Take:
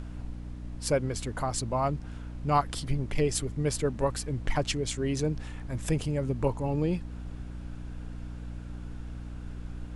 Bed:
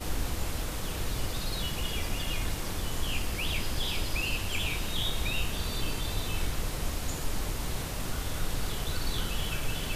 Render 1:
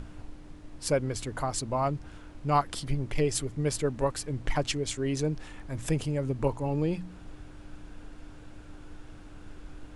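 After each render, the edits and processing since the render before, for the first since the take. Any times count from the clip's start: de-hum 60 Hz, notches 4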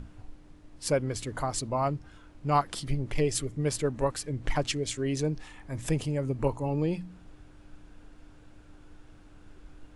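noise print and reduce 6 dB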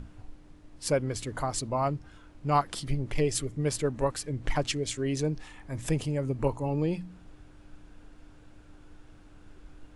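nothing audible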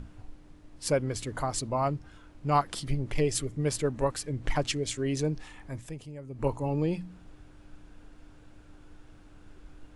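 5.68–6.49 dip -12.5 dB, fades 0.19 s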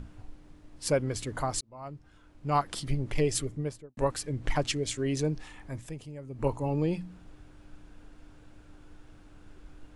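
1.61–2.79 fade in; 3.4–3.97 studio fade out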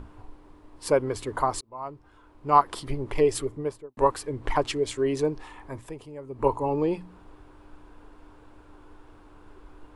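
fifteen-band EQ 160 Hz -6 dB, 400 Hz +8 dB, 1000 Hz +12 dB, 6300 Hz -5 dB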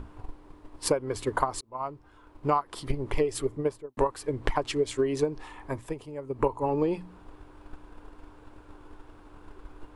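transient shaper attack +7 dB, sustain 0 dB; compressor 12:1, threshold -21 dBFS, peak gain reduction 14 dB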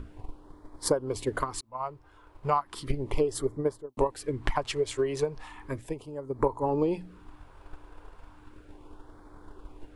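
LFO notch sine 0.35 Hz 220–2800 Hz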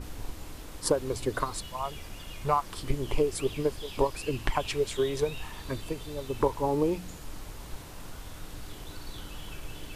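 add bed -10.5 dB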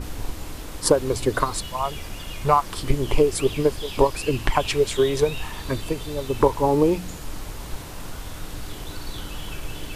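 gain +8 dB; limiter -2 dBFS, peak gain reduction 2 dB

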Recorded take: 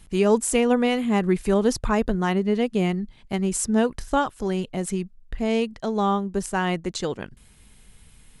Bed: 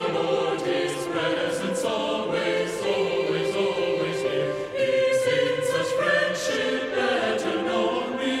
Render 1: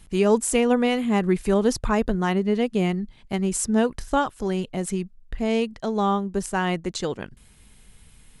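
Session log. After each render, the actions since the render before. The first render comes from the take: nothing audible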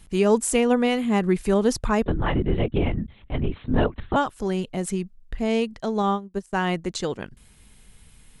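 2.06–4.16 LPC vocoder at 8 kHz whisper; 6.02–6.53 upward expander 2.5:1, over -34 dBFS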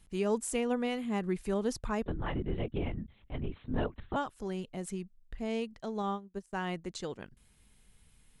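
gain -11.5 dB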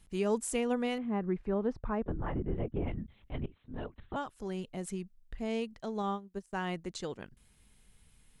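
0.98–2.88 LPF 1500 Hz; 3.46–4.65 fade in, from -18 dB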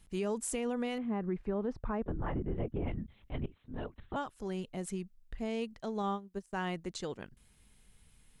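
limiter -25.5 dBFS, peak gain reduction 6.5 dB

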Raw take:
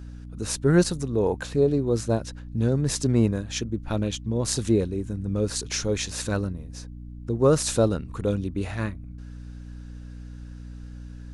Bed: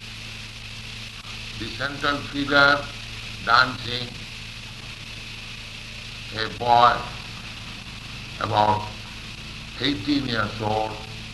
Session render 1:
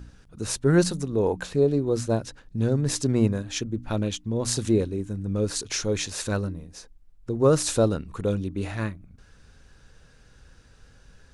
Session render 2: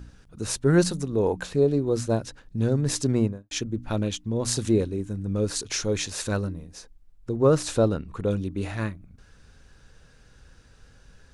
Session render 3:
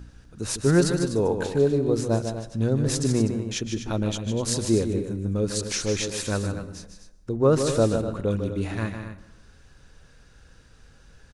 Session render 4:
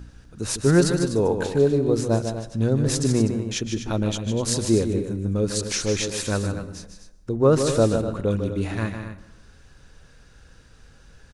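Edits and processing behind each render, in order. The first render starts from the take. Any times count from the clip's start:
de-hum 60 Hz, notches 5
3.11–3.51 studio fade out; 7.36–8.31 high shelf 5300 Hz -9 dB
on a send: loudspeakers at several distances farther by 52 m -8 dB, 85 m -11 dB; on the sum: plate-style reverb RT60 1 s, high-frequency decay 0.6×, pre-delay 0.11 s, DRR 17.5 dB
gain +2 dB

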